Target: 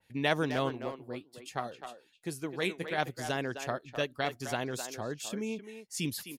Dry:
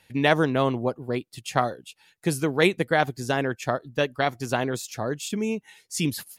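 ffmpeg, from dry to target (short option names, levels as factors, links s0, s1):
-filter_complex "[0:a]asettb=1/sr,asplit=3[s0][s1][s2];[s0]atrim=end=0.704[s3];[s1]atrim=start=0.7:end=2.98,asetpts=PTS-STARTPTS,afade=t=in:d=0.004:c=qsin,afade=t=out:st=2.276:d=0.004:c=qsin,flanger=delay=2.2:depth=9.7:regen=63:speed=1.2:shape=sinusoidal[s4];[s2]atrim=start=2.976[s5];[s3][s4]acrossfade=d=0.004:c1=hsin:c2=qsin[s6];[s6][s5]acrossfade=d=0.004:c1=qsin:c2=hsin,asplit=2[s7][s8];[s8]adelay=260,highpass=300,lowpass=3400,asoftclip=type=hard:threshold=0.178,volume=0.398[s9];[s7][s9]amix=inputs=2:normalize=0,adynamicequalizer=threshold=0.0158:dfrequency=2400:dqfactor=0.7:tfrequency=2400:tqfactor=0.7:attack=5:release=100:ratio=0.375:range=2.5:mode=boostabove:tftype=highshelf,volume=0.355"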